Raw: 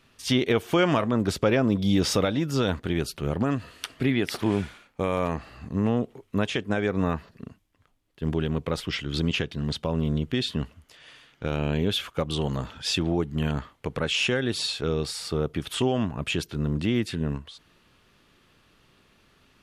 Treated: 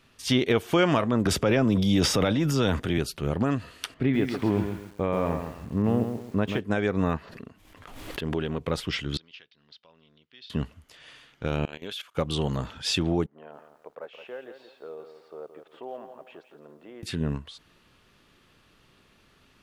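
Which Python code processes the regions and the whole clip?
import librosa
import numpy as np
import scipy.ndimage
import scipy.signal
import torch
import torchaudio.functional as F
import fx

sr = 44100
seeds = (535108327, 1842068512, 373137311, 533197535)

y = fx.chain(x, sr, fx.notch(hz=4200.0, q=7.9),
    fx.transient(attack_db=-4, sustain_db=7),
    fx.band_squash(depth_pct=40), at=(1.25, 2.98))
y = fx.chain(y, sr, fx.lowpass(hz=1500.0, slope=6),
    fx.echo_crushed(ms=135, feedback_pct=35, bits=8, wet_db=-7), at=(3.94, 6.61))
y = fx.chain(y, sr, fx.bass_treble(bass_db=-7, treble_db=-5),
    fx.pre_swell(db_per_s=44.0), at=(7.17, 8.61))
y = fx.chain(y, sr, fx.bandpass_q(hz=5400.0, q=2.5),
    fx.air_absorb(metres=370.0), at=(9.17, 10.5))
y = fx.chain(y, sr, fx.highpass(hz=1100.0, slope=6),
    fx.level_steps(step_db=18), at=(11.65, 12.15))
y = fx.chain(y, sr, fx.ladder_bandpass(hz=720.0, resonance_pct=35),
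    fx.quant_float(bits=6),
    fx.echo_crushed(ms=170, feedback_pct=35, bits=11, wet_db=-9.0), at=(13.26, 17.03))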